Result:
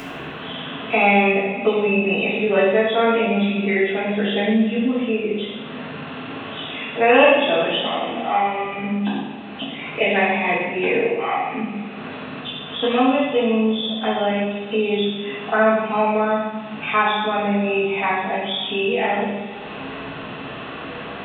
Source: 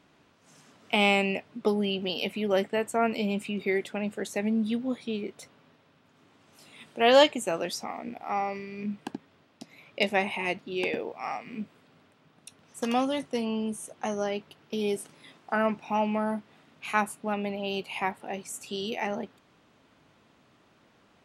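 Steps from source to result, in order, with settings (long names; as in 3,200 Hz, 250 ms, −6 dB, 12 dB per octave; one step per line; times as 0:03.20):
hearing-aid frequency compression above 2,500 Hz 4 to 1
upward compression, threshold −35 dBFS
flutter between parallel walls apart 10.9 metres, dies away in 0.43 s
coupled-rooms reverb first 0.8 s, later 3.1 s, from −18 dB, DRR −9.5 dB
multiband upward and downward compressor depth 40%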